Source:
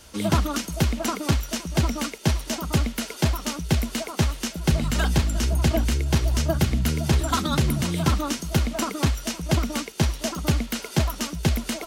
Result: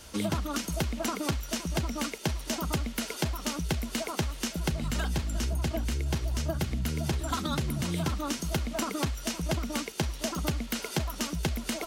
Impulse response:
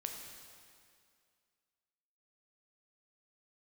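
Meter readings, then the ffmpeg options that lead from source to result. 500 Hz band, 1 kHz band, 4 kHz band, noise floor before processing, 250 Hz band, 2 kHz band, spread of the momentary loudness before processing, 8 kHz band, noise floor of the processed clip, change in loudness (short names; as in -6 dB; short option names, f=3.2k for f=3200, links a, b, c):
-6.0 dB, -6.0 dB, -5.5 dB, -40 dBFS, -6.5 dB, -5.5 dB, 4 LU, -5.0 dB, -42 dBFS, -7.0 dB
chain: -af "acompressor=threshold=-27dB:ratio=6"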